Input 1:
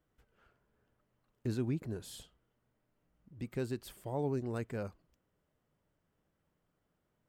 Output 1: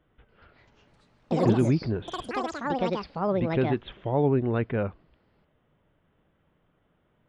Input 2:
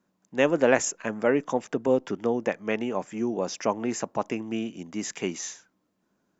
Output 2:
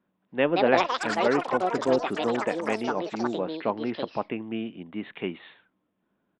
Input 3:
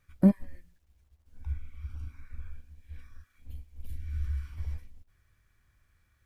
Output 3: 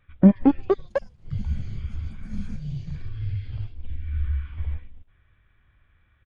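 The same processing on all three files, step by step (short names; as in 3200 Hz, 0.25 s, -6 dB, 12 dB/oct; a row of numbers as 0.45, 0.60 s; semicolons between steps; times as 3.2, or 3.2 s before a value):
downsampling 8000 Hz; echoes that change speed 0.291 s, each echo +6 st, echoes 3; match loudness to -27 LUFS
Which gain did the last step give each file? +11.5, -1.5, +6.5 dB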